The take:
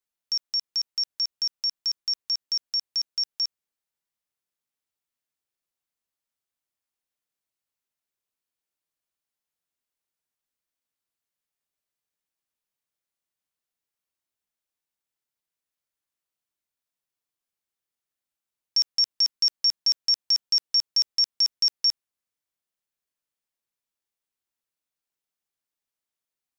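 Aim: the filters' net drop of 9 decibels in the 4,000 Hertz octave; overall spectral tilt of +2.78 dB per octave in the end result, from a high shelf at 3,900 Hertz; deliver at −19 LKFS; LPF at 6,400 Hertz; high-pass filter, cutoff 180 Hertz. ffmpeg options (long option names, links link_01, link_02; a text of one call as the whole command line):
ffmpeg -i in.wav -af "highpass=180,lowpass=6400,highshelf=frequency=3900:gain=-4,equalizer=frequency=4000:width_type=o:gain=-8.5,volume=13.5dB" out.wav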